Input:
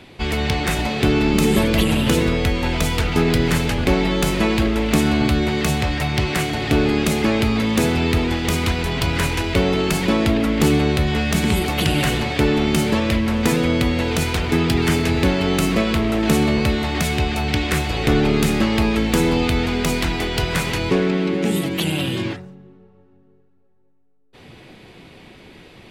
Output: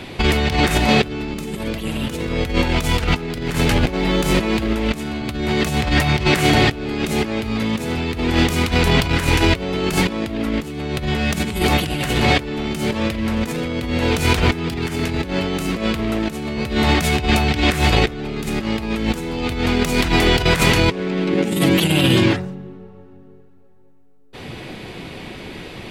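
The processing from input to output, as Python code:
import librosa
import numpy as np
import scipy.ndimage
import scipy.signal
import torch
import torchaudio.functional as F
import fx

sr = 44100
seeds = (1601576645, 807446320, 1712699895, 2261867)

y = fx.over_compress(x, sr, threshold_db=-23.0, ratio=-0.5)
y = fx.leveller(y, sr, passes=1, at=(3.54, 4.73))
y = F.gain(torch.from_numpy(y), 5.0).numpy()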